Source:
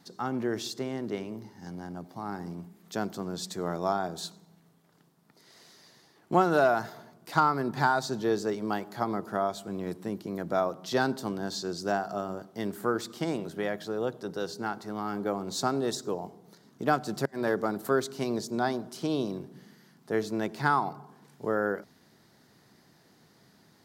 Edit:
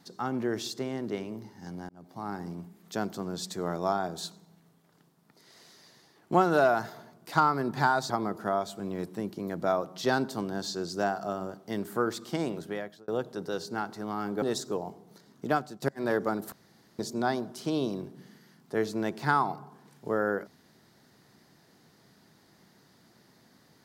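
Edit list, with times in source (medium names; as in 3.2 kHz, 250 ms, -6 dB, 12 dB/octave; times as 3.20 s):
1.89–2.22 s: fade in
8.10–8.98 s: delete
13.47–13.96 s: fade out
15.30–15.79 s: delete
16.84–17.19 s: fade out, to -23.5 dB
17.89–18.36 s: room tone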